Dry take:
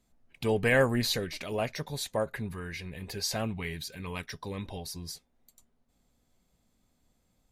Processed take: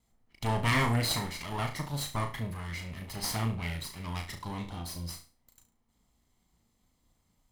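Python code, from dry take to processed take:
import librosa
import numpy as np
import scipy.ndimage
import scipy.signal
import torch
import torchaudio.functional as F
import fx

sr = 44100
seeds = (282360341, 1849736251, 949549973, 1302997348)

y = fx.lower_of_two(x, sr, delay_ms=0.97)
y = fx.room_flutter(y, sr, wall_m=6.0, rt60_s=0.34)
y = fx.end_taper(y, sr, db_per_s=280.0)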